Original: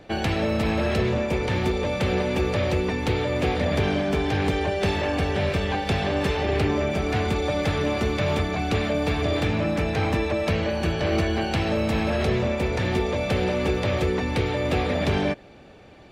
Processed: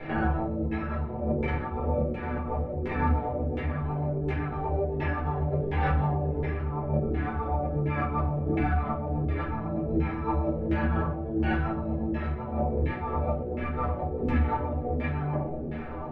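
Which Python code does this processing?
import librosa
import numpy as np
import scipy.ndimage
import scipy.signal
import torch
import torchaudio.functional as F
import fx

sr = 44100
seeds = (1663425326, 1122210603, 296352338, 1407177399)

y = fx.over_compress(x, sr, threshold_db=-30.0, ratio=-0.5)
y = fx.filter_lfo_lowpass(y, sr, shape='saw_down', hz=1.4, low_hz=350.0, high_hz=2200.0, q=2.3)
y = fx.stiff_resonator(y, sr, f0_hz=75.0, decay_s=0.23, stiffness=0.008)
y = fx.vibrato(y, sr, rate_hz=8.0, depth_cents=24.0)
y = fx.room_shoebox(y, sr, seeds[0], volume_m3=270.0, walls='furnished', distance_m=4.2)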